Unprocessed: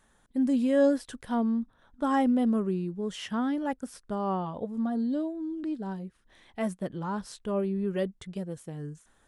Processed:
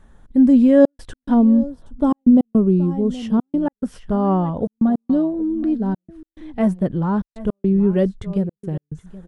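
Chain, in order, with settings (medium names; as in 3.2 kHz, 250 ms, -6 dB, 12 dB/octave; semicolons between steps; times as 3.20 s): tilt EQ -3 dB/octave; delay 772 ms -17.5 dB; trance gate "xxxxxx.x." 106 bpm -60 dB; 1.34–3.63 s: peaking EQ 1.7 kHz -11 dB 1 oct; trim +7.5 dB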